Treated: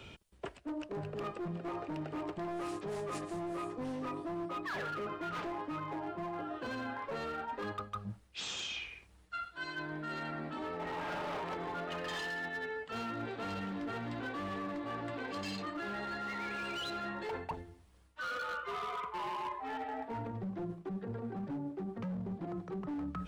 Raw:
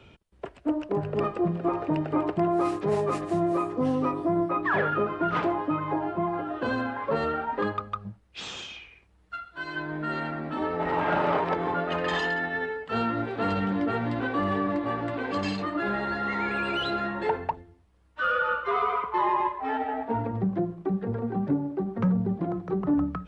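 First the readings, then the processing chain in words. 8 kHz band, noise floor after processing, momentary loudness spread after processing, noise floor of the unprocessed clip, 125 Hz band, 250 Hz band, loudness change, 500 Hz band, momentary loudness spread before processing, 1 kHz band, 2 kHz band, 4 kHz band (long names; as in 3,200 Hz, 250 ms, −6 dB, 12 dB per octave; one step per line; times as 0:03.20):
can't be measured, −60 dBFS, 4 LU, −58 dBFS, −12.0 dB, −12.5 dB, −12.0 dB, −12.5 dB, 8 LU, −11.5 dB, −10.0 dB, −5.0 dB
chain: high-shelf EQ 3,200 Hz +10 dB
hard clipping −23.5 dBFS, distortion −12 dB
reversed playback
downward compressor 12 to 1, threshold −37 dBFS, peak gain reduction 12.5 dB
reversed playback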